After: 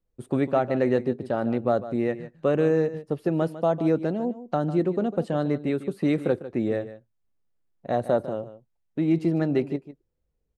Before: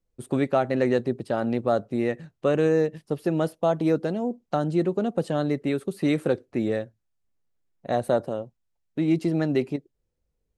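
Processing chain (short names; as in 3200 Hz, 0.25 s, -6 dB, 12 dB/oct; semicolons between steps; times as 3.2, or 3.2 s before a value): high shelf 3200 Hz -9 dB; echo 0.15 s -14 dB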